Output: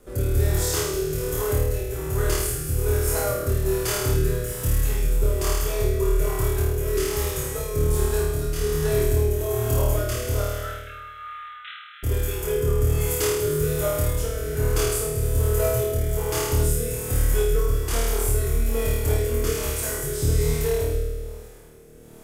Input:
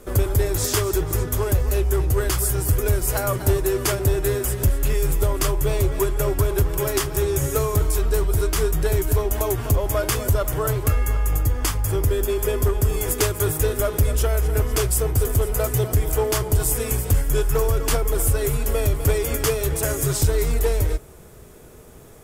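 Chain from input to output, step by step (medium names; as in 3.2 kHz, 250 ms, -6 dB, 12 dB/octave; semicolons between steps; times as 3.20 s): 10.41–12.03 s: brick-wall FIR band-pass 1.2–4.1 kHz; flutter echo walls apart 4.5 m, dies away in 1.4 s; rotary cabinet horn 1.2 Hz; word length cut 12-bit, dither none; trim -6 dB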